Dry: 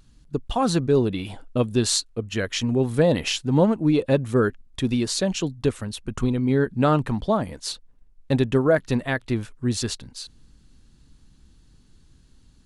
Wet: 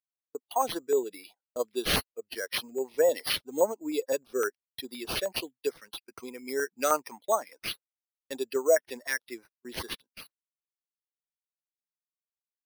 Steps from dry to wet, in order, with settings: expander on every frequency bin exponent 1.5; high-pass 430 Hz 24 dB/octave; gate -49 dBFS, range -27 dB; 5.36–7.72 s: peaking EQ 2.3 kHz +10 dB 0.74 oct; careless resampling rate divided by 6×, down none, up hold; step-sequenced notch 9.7 Hz 720–4200 Hz

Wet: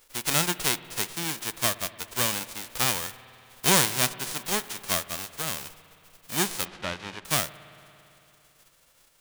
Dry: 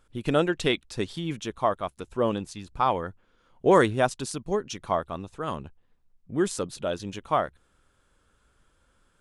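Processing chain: formants flattened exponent 0.1; 6.65–7.25 s: low-pass 3.1 kHz 12 dB/octave; in parallel at -0.5 dB: compression, threshold -32 dBFS, peak gain reduction 18.5 dB; on the sum: spring tank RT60 3.1 s, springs 56 ms, chirp 35 ms, DRR 15.5 dB; trim -3.5 dB

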